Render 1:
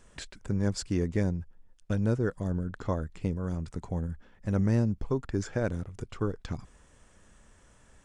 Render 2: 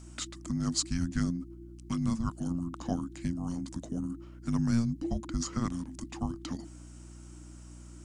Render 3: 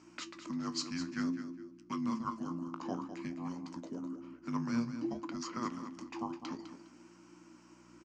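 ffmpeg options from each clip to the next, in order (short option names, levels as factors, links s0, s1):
-af "afreqshift=-350,bass=f=250:g=-4,treble=f=4000:g=9,aeval=exprs='val(0)+0.00447*(sin(2*PI*60*n/s)+sin(2*PI*2*60*n/s)/2+sin(2*PI*3*60*n/s)/3+sin(2*PI*4*60*n/s)/4+sin(2*PI*5*60*n/s)/5)':c=same"
-filter_complex "[0:a]flanger=delay=9.8:depth=9.8:regen=62:speed=0.55:shape=triangular,highpass=290,equalizer=f=340:t=q:w=4:g=4,equalizer=f=690:t=q:w=4:g=-5,equalizer=f=1000:t=q:w=4:g=7,equalizer=f=2400:t=q:w=4:g=4,equalizer=f=3600:t=q:w=4:g=-8,lowpass=f=5400:w=0.5412,lowpass=f=5400:w=1.3066,asplit=2[s0][s1];[s1]aecho=0:1:205|410|615:0.299|0.0716|0.0172[s2];[s0][s2]amix=inputs=2:normalize=0,volume=1.33"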